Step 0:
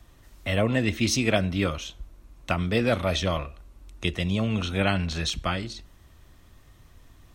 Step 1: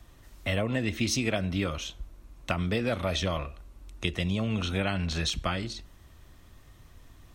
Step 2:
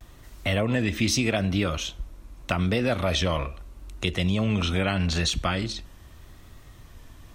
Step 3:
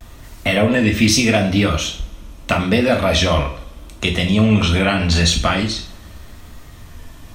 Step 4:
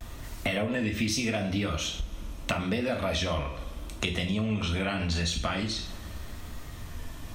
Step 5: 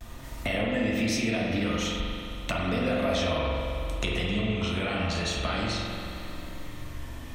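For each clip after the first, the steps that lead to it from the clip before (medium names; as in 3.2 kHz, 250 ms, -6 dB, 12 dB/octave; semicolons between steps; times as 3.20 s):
compression, threshold -24 dBFS, peak gain reduction 7.5 dB
in parallel at -1 dB: peak limiter -21.5 dBFS, peak gain reduction 10.5 dB; on the sum: vibrato 0.81 Hz 59 cents
two-slope reverb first 0.42 s, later 2.6 s, from -28 dB, DRR 2 dB; trim +7.5 dB
compression 4:1, threshold -26 dBFS, peak gain reduction 14.5 dB; trim -2 dB
spring tank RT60 2.7 s, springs 44 ms, chirp 55 ms, DRR -2 dB; trim -2 dB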